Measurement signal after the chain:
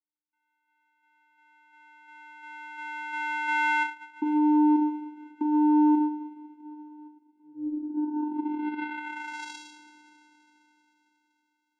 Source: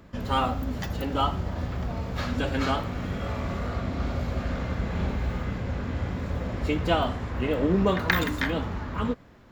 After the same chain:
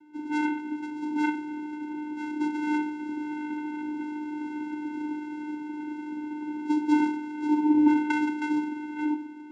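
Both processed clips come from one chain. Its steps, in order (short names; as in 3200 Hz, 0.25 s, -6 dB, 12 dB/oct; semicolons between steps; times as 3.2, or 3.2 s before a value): two-slope reverb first 0.4 s, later 4.2 s, from -18 dB, DRR 1.5 dB; mistuned SSB -80 Hz 170–3200 Hz; vocoder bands 4, square 301 Hz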